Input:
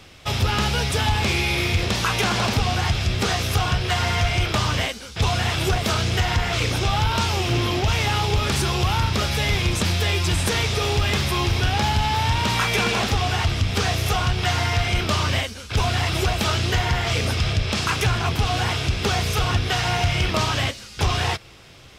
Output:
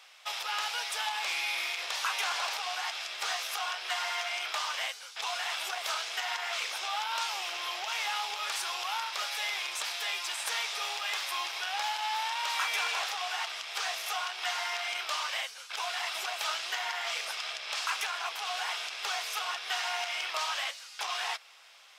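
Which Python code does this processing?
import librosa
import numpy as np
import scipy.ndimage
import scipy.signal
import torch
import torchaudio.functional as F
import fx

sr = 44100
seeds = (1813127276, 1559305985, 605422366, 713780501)

p1 = 10.0 ** (-28.0 / 20.0) * np.tanh(x / 10.0 ** (-28.0 / 20.0))
p2 = x + F.gain(torch.from_numpy(p1), -9.5).numpy()
p3 = scipy.signal.sosfilt(scipy.signal.butter(4, 740.0, 'highpass', fs=sr, output='sos'), p2)
y = F.gain(torch.from_numpy(p3), -9.0).numpy()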